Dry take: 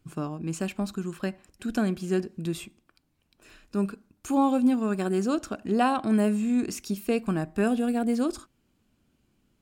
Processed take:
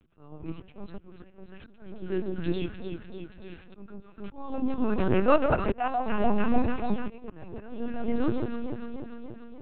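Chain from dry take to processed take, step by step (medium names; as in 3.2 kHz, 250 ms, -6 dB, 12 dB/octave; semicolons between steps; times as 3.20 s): time-frequency box 5.11–5.88 s, 510–2900 Hz +10 dB; echo whose repeats swap between lows and highs 147 ms, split 980 Hz, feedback 80%, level -7 dB; spring tank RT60 1.3 s, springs 34/49 ms, chirp 80 ms, DRR 17.5 dB; slow attack 745 ms; LPC vocoder at 8 kHz pitch kept; trim +2 dB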